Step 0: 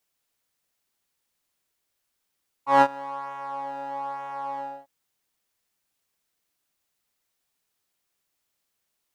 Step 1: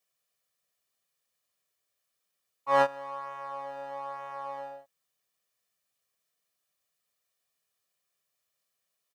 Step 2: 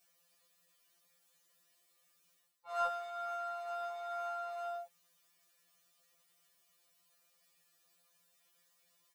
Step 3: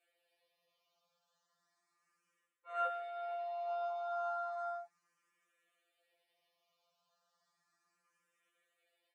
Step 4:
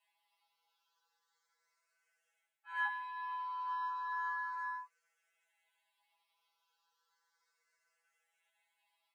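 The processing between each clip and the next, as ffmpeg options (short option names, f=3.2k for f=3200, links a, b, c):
-af "highpass=120,aecho=1:1:1.7:0.54,volume=-4.5dB"
-af "areverse,acompressor=threshold=-40dB:ratio=4,areverse,afftfilt=real='re*2.83*eq(mod(b,8),0)':imag='im*2.83*eq(mod(b,8),0)':win_size=2048:overlap=0.75,volume=11dB"
-filter_complex "[0:a]bandpass=f=830:t=q:w=0.52:csg=0,asplit=2[a][b];[b]afreqshift=0.34[c];[a][c]amix=inputs=2:normalize=1,volume=4dB"
-af "afreqshift=310"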